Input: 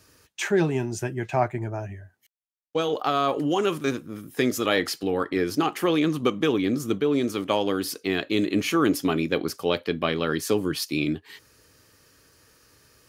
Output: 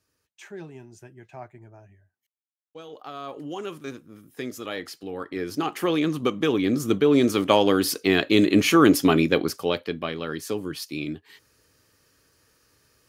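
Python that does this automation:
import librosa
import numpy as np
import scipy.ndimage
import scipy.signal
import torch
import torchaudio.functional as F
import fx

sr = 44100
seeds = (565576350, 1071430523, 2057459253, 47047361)

y = fx.gain(x, sr, db=fx.line((2.77, -17.5), (3.54, -10.0), (5.0, -10.0), (5.82, -1.0), (6.34, -1.0), (7.23, 5.5), (9.2, 5.5), (10.12, -5.5)))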